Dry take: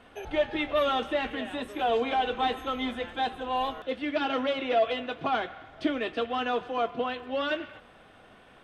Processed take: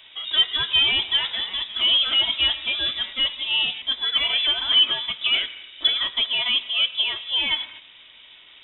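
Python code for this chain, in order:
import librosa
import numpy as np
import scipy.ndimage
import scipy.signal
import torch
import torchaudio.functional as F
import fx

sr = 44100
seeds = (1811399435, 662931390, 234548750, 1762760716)

y = fx.freq_invert(x, sr, carrier_hz=3700)
y = fx.high_shelf(y, sr, hz=2500.0, db=11.0)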